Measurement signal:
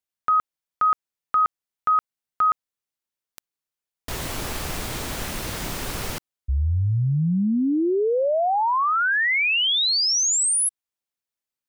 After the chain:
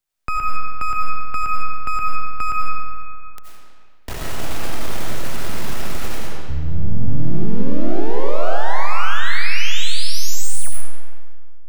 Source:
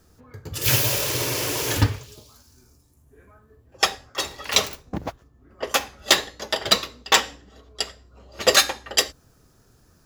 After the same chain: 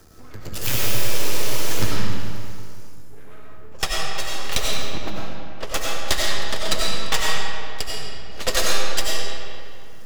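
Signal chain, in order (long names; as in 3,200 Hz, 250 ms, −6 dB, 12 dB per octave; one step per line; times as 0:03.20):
half-wave rectification
comb and all-pass reverb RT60 1.7 s, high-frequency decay 0.75×, pre-delay 50 ms, DRR −3.5 dB
multiband upward and downward compressor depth 40%
level −2 dB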